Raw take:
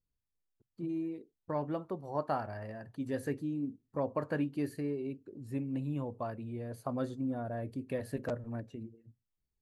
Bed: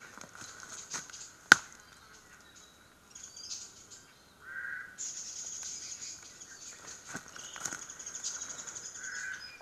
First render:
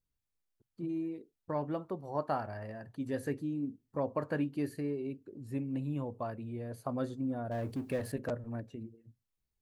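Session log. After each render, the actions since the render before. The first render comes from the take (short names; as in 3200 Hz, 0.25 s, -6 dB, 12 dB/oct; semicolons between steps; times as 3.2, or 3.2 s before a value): 7.51–8.12 G.711 law mismatch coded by mu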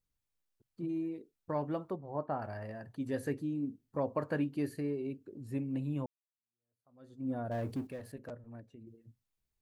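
1.96–2.42 tape spacing loss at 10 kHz 43 dB; 6.06–7.29 fade in exponential; 7.87–8.87 gain -9.5 dB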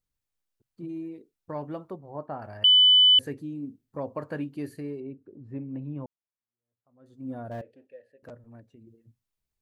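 2.64–3.19 bleep 3000 Hz -13.5 dBFS; 5–7.06 LPF 1700 Hz; 7.61–8.23 vowel filter e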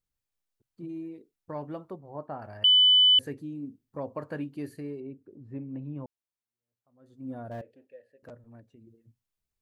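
gain -2 dB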